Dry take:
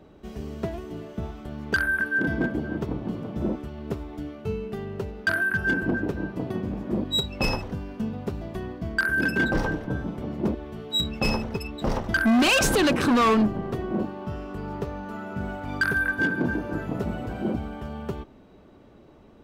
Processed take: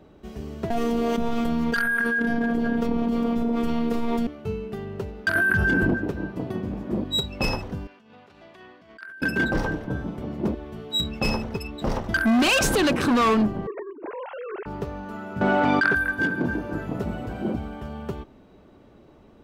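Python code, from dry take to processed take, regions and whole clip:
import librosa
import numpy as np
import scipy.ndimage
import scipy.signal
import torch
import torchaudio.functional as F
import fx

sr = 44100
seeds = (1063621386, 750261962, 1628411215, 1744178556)

y = fx.chain(x, sr, fx.robotise(hz=233.0),
    fx.env_flatten(amount_pct=100), at=(0.7, 4.27))
y = fx.chain(y, sr, fx.low_shelf(hz=140.0, db=5.5),
    fx.env_flatten(amount_pct=100), at=(5.35, 5.94))
y = fx.chain(y, sr, fx.high_shelf(hz=2700.0, db=-7.5),
    fx.over_compress(threshold_db=-33.0, ratio=-1.0),
    fx.bandpass_q(hz=3100.0, q=0.75), at=(7.87, 9.22))
y = fx.chain(y, sr, fx.sine_speech(),
    fx.over_compress(threshold_db=-32.0, ratio=-0.5), at=(13.67, 14.66))
y = fx.chain(y, sr, fx.bandpass_edges(low_hz=220.0, high_hz=4600.0),
    fx.env_flatten(amount_pct=100), at=(15.41, 15.95))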